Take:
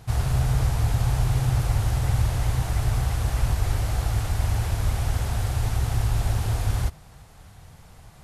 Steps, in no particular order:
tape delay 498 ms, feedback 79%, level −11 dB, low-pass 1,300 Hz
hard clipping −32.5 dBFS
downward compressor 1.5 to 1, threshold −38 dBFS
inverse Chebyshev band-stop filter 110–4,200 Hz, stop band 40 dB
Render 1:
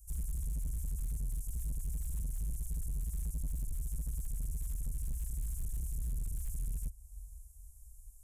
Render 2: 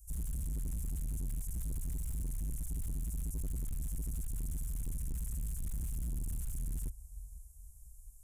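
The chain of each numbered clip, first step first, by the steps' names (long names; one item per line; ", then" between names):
tape delay, then inverse Chebyshev band-stop filter, then downward compressor, then hard clipping
inverse Chebyshev band-stop filter, then tape delay, then hard clipping, then downward compressor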